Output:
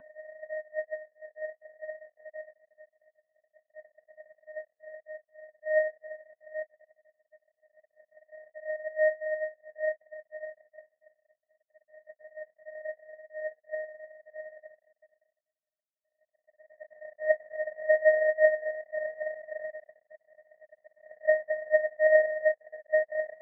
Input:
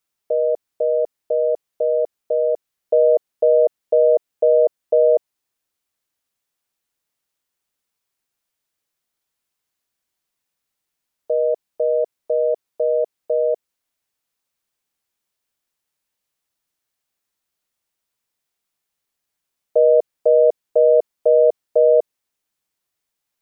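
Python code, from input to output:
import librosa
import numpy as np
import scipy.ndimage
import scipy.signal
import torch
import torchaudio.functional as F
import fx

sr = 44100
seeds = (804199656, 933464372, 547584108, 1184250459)

y = fx.paulstretch(x, sr, seeds[0], factor=8.1, window_s=0.5, from_s=0.77)
y = scipy.signal.sosfilt(scipy.signal.cheby1(4, 1.0, [280.0, 580.0], 'bandstop', fs=sr, output='sos'), y)
y = fx.power_curve(y, sr, exponent=3.0)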